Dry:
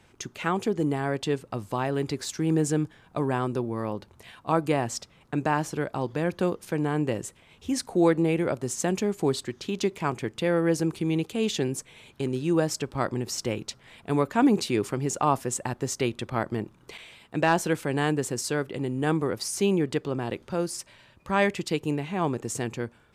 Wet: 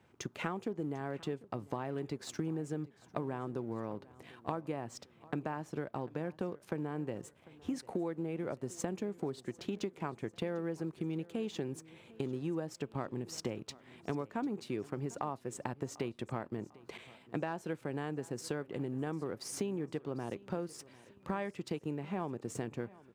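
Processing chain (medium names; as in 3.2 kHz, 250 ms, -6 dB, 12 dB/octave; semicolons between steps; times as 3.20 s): companding laws mixed up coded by A; high-pass 92 Hz; treble shelf 2.5 kHz -11 dB; compression 12:1, threshold -36 dBFS, peak gain reduction 20 dB; feedback delay 747 ms, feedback 44%, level -21 dB; trim +2.5 dB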